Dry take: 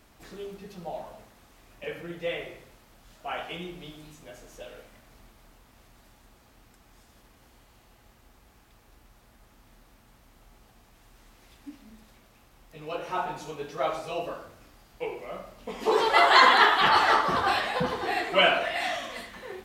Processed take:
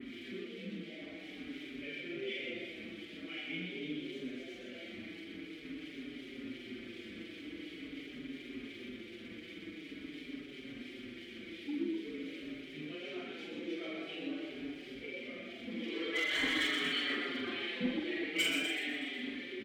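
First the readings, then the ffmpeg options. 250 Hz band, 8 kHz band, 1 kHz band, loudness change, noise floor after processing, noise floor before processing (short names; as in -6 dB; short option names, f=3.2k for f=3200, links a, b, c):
+1.5 dB, -5.5 dB, -27.0 dB, -15.0 dB, -50 dBFS, -59 dBFS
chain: -filter_complex "[0:a]aeval=exprs='val(0)+0.5*0.0335*sgn(val(0))':c=same,adynamicequalizer=threshold=0.00447:dfrequency=6300:dqfactor=1.4:tfrequency=6300:tqfactor=1.4:attack=5:release=100:ratio=0.375:range=3.5:mode=cutabove:tftype=bell,asplit=2[a][b];[b]adynamicsmooth=sensitivity=7:basefreq=6k,volume=-1dB[c];[a][c]amix=inputs=2:normalize=0,asplit=3[d][e][f];[d]bandpass=f=270:t=q:w=8,volume=0dB[g];[e]bandpass=f=2.29k:t=q:w=8,volume=-6dB[h];[f]bandpass=f=3.01k:t=q:w=8,volume=-9dB[i];[g][h][i]amix=inputs=3:normalize=0,volume=25.5dB,asoftclip=hard,volume=-25.5dB,acrossover=split=1900[j][k];[j]aeval=exprs='val(0)*(1-0.7/2+0.7/2*cos(2*PI*2.8*n/s))':c=same[l];[k]aeval=exprs='val(0)*(1-0.7/2-0.7/2*cos(2*PI*2.8*n/s))':c=same[m];[l][m]amix=inputs=2:normalize=0,asplit=2[n][o];[o]adelay=44,volume=-4dB[p];[n][p]amix=inputs=2:normalize=0,asplit=2[q][r];[r]asplit=7[s][t][u][v][w][x][y];[s]adelay=124,afreqshift=53,volume=-4dB[z];[t]adelay=248,afreqshift=106,volume=-9.8dB[aa];[u]adelay=372,afreqshift=159,volume=-15.7dB[ab];[v]adelay=496,afreqshift=212,volume=-21.5dB[ac];[w]adelay=620,afreqshift=265,volume=-27.4dB[ad];[x]adelay=744,afreqshift=318,volume=-33.2dB[ae];[y]adelay=868,afreqshift=371,volume=-39.1dB[af];[z][aa][ab][ac][ad][ae][af]amix=inputs=7:normalize=0[ag];[q][ag]amix=inputs=2:normalize=0,asplit=2[ah][ai];[ai]adelay=5.2,afreqshift=-0.46[aj];[ah][aj]amix=inputs=2:normalize=1,volume=1.5dB"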